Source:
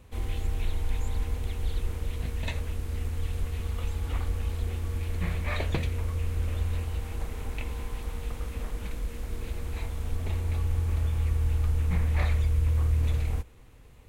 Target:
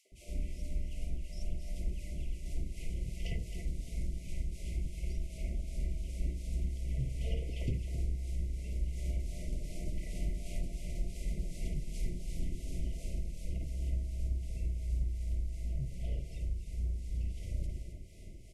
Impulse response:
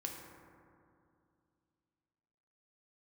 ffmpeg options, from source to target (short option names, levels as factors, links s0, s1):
-filter_complex "[0:a]afftfilt=real='re*(1-between(b*sr/4096,920,2600))':imag='im*(1-between(b*sr/4096,920,2600))':win_size=4096:overlap=0.75,adynamicequalizer=threshold=0.00251:dfrequency=190:dqfactor=2.7:tfrequency=190:tqfactor=2.7:attack=5:release=100:ratio=0.375:range=3.5:mode=boostabove:tftype=bell,areverse,acompressor=threshold=0.02:ratio=16,areverse,tremolo=f=3.6:d=0.61,acrossover=split=580|3100[s0][s1][s2];[s1]adelay=40[s3];[s0]adelay=90[s4];[s4][s3][s2]amix=inputs=3:normalize=0,asetrate=33516,aresample=44100,asplit=2[s5][s6];[s6]aecho=0:1:265:0.335[s7];[s5][s7]amix=inputs=2:normalize=0,volume=1.88"